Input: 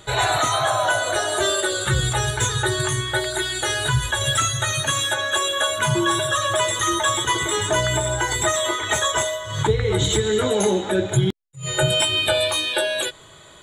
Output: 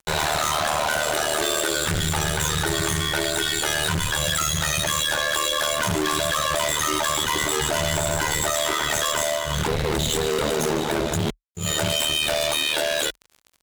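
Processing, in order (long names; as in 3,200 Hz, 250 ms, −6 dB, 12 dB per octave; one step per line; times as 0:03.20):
fuzz pedal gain 32 dB, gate −38 dBFS
ring modulation 38 Hz
level −5.5 dB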